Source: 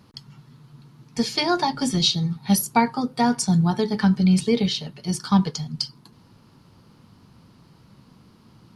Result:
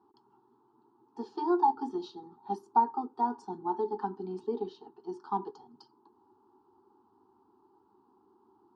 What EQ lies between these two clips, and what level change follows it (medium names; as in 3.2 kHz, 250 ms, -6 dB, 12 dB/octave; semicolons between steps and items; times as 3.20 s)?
two resonant band-passes 570 Hz, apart 1.1 oct; distance through air 67 m; static phaser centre 580 Hz, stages 6; +2.5 dB